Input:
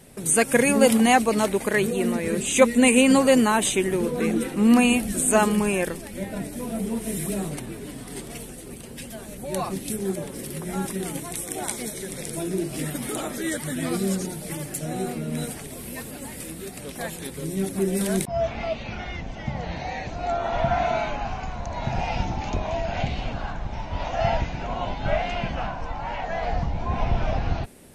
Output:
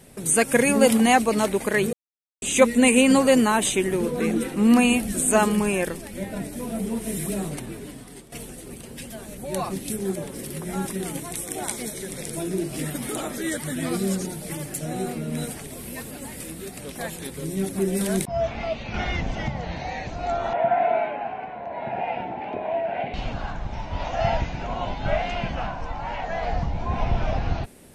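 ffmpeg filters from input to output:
ffmpeg -i in.wav -filter_complex "[0:a]asettb=1/sr,asplit=3[link_01][link_02][link_03];[link_01]atrim=end=18.944[link_04];[link_02]atrim=start=18.94:end=19.48,asetpts=PTS-STARTPTS,afade=type=in:duration=0.004:curve=qsin,afade=type=out:start_time=0.536:duration=0.004:curve=qsin,acontrast=69[link_05];[link_03]atrim=start=19.476[link_06];[link_04][link_05]acrossfade=duration=0.004:curve1=hsin:curve2=qsin[link_07];[link_07][link_06]acrossfade=duration=0.004:curve1=qsin:curve2=hsin,asettb=1/sr,asplit=3[link_08][link_09][link_10];[link_08]atrim=end=20.534[link_11];[link_09]atrim=start=20.53:end=23.14,asetpts=PTS-STARTPTS,afade=type=in:duration=0.004:curve=qsin,afade=type=out:start_time=2.606:duration=0.004:curve=qsin,highpass=280,equalizer=frequency=430:width_type=q:width=4:gain=4,equalizer=frequency=680:width_type=q:width=4:gain=4,equalizer=frequency=1200:width_type=q:width=4:gain=-9,lowpass=frequency=2500:width=0.5412,lowpass=frequency=2500:width=1.3066[link_12];[link_10]atrim=start=23.136[link_13];[link_11][link_12]acrossfade=duration=0.004:curve1=hsin:curve2=qsin[link_14];[link_14][link_13]acrossfade=duration=0.004:curve1=qsin:curve2=hsin,asplit=4[link_15][link_16][link_17][link_18];[link_15]atrim=end=1.93,asetpts=PTS-STARTPTS,afade=type=out:start_time=1.926:duration=0.004:curve=hsin[link_19];[link_16]atrim=start=1.93:end=2.42,asetpts=PTS-STARTPTS,volume=0[link_20];[link_17]atrim=start=2.42:end=8.32,asetpts=PTS-STARTPTS,afade=type=in:duration=0.004:curve=hsin,afade=type=out:start_time=5.34:duration=0.56:silence=0.199526[link_21];[link_18]atrim=start=8.32,asetpts=PTS-STARTPTS,afade=type=in:duration=0.004:curve=hsin:silence=0.199526[link_22];[link_19][link_20][link_21][link_22]concat=n=4:v=0:a=1" out.wav

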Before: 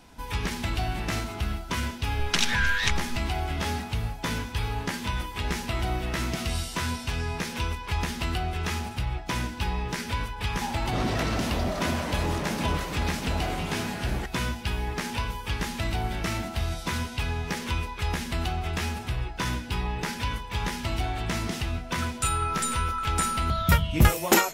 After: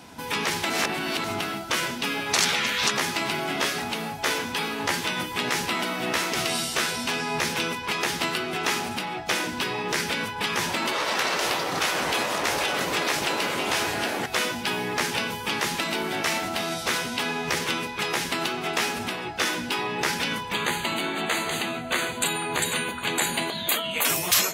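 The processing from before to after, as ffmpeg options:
ffmpeg -i in.wav -filter_complex "[0:a]asplit=3[link_01][link_02][link_03];[link_01]afade=type=out:start_time=20.52:duration=0.02[link_04];[link_02]asuperstop=centerf=5400:order=12:qfactor=3.6,afade=type=in:start_time=20.52:duration=0.02,afade=type=out:start_time=24.04:duration=0.02[link_05];[link_03]afade=type=in:start_time=24.04:duration=0.02[link_06];[link_04][link_05][link_06]amix=inputs=3:normalize=0,asplit=3[link_07][link_08][link_09];[link_07]atrim=end=0.702[link_10];[link_08]atrim=start=0.698:end=1.242,asetpts=PTS-STARTPTS,areverse[link_11];[link_09]atrim=start=1.238[link_12];[link_10][link_11]acrossfade=duration=0.004:curve1=hsin:curve2=hsin[link_13];[link_13][link_12]acrossfade=duration=0.004:curve1=hsin:curve2=hsin,afftfilt=real='re*lt(hypot(re,im),0.112)':imag='im*lt(hypot(re,im),0.112)':win_size=1024:overlap=0.75,highpass=120,volume=8dB" out.wav

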